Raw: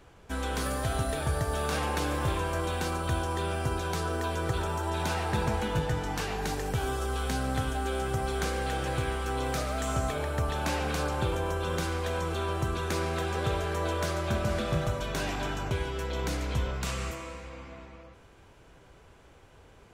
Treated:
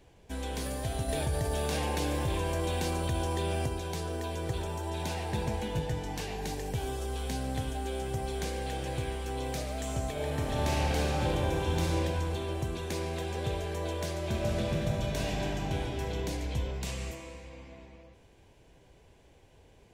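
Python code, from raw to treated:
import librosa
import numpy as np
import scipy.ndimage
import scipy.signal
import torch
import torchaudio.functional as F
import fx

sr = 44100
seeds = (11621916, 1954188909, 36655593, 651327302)

y = fx.env_flatten(x, sr, amount_pct=70, at=(1.08, 3.66))
y = fx.reverb_throw(y, sr, start_s=10.12, length_s=1.81, rt60_s=2.9, drr_db=-3.5)
y = fx.reverb_throw(y, sr, start_s=14.17, length_s=1.92, rt60_s=2.8, drr_db=0.5)
y = fx.peak_eq(y, sr, hz=1300.0, db=-14.5, octaves=0.48)
y = y * 10.0 ** (-3.0 / 20.0)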